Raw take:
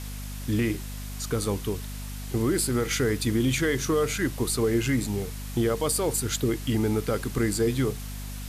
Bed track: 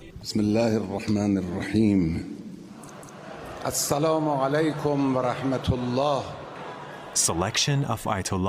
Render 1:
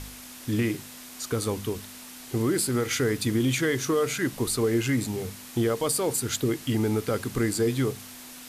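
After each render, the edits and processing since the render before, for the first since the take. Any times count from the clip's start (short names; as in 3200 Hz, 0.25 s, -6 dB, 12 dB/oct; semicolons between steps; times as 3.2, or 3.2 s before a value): de-hum 50 Hz, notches 4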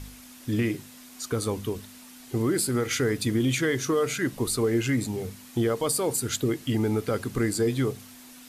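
denoiser 6 dB, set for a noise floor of -44 dBFS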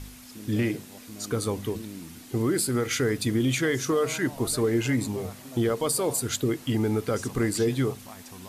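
add bed track -19.5 dB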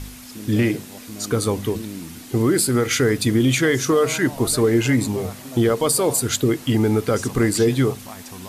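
gain +7 dB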